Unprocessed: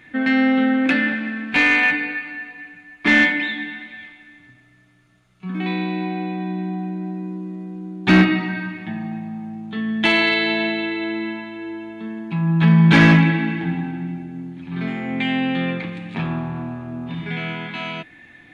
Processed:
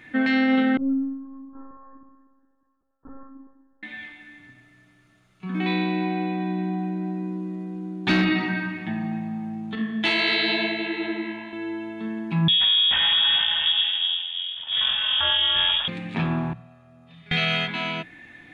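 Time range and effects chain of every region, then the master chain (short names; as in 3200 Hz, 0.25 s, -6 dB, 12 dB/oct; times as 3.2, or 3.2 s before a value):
0.77–3.83 steep low-pass 1400 Hz 96 dB/oct + metallic resonator 130 Hz, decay 0.65 s, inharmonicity 0.002 + monotone LPC vocoder at 8 kHz 270 Hz
9.75–11.53 HPF 110 Hz + detuned doubles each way 53 cents
12.48–15.88 minimum comb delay 1.1 ms + inverted band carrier 3500 Hz + bell 410 Hz -5.5 dB 0.7 oct
16.53–17.68 gate with hold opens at -18 dBFS, closes at -25 dBFS + high shelf 2400 Hz +11 dB + comb 1.6 ms, depth 79%
whole clip: notches 60/120/180 Hz; dynamic EQ 4100 Hz, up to +7 dB, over -37 dBFS, Q 1.6; limiter -13 dBFS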